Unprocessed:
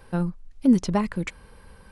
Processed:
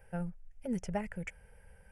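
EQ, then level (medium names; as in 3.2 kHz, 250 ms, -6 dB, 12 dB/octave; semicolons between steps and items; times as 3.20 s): static phaser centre 1.1 kHz, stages 6; -7.5 dB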